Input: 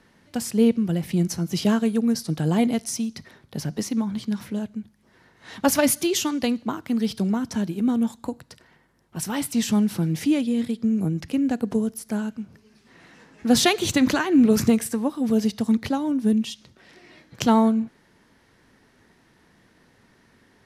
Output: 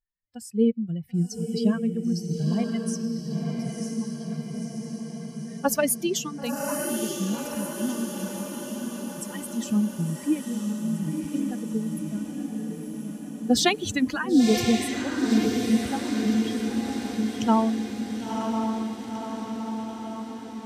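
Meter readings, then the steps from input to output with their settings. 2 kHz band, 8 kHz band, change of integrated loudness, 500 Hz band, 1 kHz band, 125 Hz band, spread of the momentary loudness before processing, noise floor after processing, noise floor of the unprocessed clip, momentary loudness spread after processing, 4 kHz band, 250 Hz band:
-2.0 dB, -2.5 dB, -4.0 dB, -2.5 dB, -1.5 dB, -2.5 dB, 13 LU, -40 dBFS, -60 dBFS, 11 LU, -2.5 dB, -3.0 dB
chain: expander on every frequency bin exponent 2; echo that smears into a reverb 999 ms, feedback 65%, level -4 dB

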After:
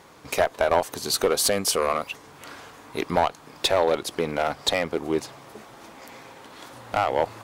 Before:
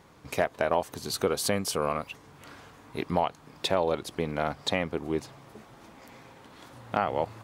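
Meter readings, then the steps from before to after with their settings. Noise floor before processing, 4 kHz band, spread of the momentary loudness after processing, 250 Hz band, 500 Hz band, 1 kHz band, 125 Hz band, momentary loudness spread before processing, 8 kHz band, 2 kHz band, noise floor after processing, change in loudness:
-54 dBFS, +7.5 dB, 22 LU, +2.0 dB, +5.0 dB, +5.0 dB, -1.0 dB, 20 LU, +8.5 dB, +5.0 dB, -49 dBFS, +5.5 dB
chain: tone controls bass -8 dB, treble +2 dB; one-sided clip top -23 dBFS; trim +7 dB

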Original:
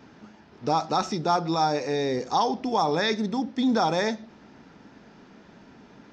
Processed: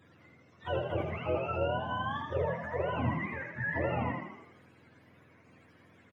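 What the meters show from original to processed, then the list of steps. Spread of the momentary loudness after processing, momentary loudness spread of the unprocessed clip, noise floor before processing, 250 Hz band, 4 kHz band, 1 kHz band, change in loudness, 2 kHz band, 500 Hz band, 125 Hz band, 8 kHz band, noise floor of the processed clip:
6 LU, 5 LU, -53 dBFS, -12.0 dB, -15.5 dB, -11.5 dB, -8.5 dB, -2.0 dB, -6.5 dB, 0.0 dB, no reading, -61 dBFS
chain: spectrum inverted on a logarithmic axis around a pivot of 660 Hz; frequency-shifting echo 81 ms, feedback 55%, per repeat +40 Hz, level -5.5 dB; trim -8.5 dB

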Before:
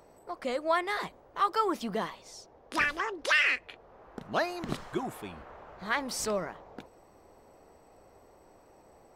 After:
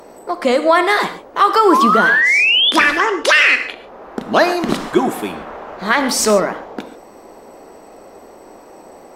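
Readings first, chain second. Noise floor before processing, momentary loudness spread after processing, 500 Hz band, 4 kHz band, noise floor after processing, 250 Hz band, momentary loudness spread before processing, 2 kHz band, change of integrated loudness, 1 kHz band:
-59 dBFS, 18 LU, +17.5 dB, +21.0 dB, -41 dBFS, +18.5 dB, 21 LU, +17.0 dB, +17.5 dB, +17.0 dB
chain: resonant low shelf 170 Hz -9 dB, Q 1.5; painted sound rise, 1.72–2.71 s, 980–3600 Hz -30 dBFS; gated-style reverb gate 160 ms flat, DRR 10 dB; loudness maximiser +18 dB; trim -1 dB; MP3 320 kbps 48 kHz

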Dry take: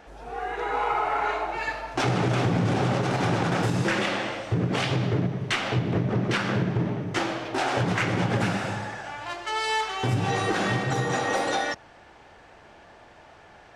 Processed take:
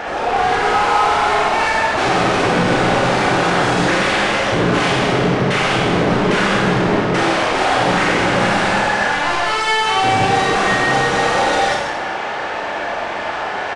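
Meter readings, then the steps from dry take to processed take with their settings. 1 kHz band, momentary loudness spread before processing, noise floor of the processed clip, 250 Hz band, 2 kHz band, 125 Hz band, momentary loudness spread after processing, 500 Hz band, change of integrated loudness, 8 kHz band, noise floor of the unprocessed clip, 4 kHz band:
+13.0 dB, 6 LU, -23 dBFS, +8.5 dB, +13.0 dB, +3.5 dB, 8 LU, +11.5 dB, +10.5 dB, +10.5 dB, -51 dBFS, +12.0 dB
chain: overdrive pedal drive 36 dB, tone 2.2 kHz, clips at -12.5 dBFS; Schroeder reverb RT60 1.1 s, combs from 30 ms, DRR -1.5 dB; resampled via 22.05 kHz

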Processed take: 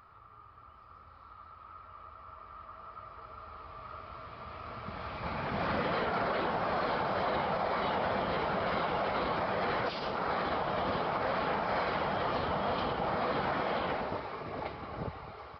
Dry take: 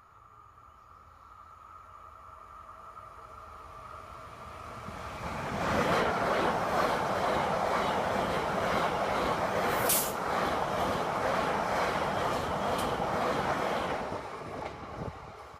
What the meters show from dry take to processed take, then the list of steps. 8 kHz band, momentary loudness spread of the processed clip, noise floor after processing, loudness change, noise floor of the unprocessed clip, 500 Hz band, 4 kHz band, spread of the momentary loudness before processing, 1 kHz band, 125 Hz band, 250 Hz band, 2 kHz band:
under -30 dB, 16 LU, -55 dBFS, -2.5 dB, -55 dBFS, -2.5 dB, -2.5 dB, 20 LU, -2.0 dB, -2.0 dB, -2.0 dB, -2.5 dB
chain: peak limiter -23 dBFS, peak gain reduction 8 dB; resampled via 11.025 kHz

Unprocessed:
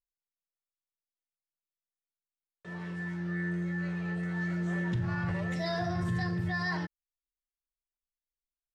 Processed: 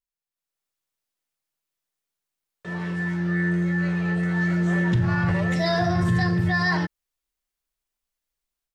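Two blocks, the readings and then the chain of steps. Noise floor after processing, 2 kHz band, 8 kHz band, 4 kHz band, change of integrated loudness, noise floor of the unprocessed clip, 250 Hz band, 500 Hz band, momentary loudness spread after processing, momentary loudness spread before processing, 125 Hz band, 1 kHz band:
under -85 dBFS, +10.0 dB, no reading, +10.0 dB, +10.0 dB, under -85 dBFS, +10.0 dB, +10.0 dB, 7 LU, 7 LU, +10.0 dB, +10.0 dB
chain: level rider gain up to 10 dB

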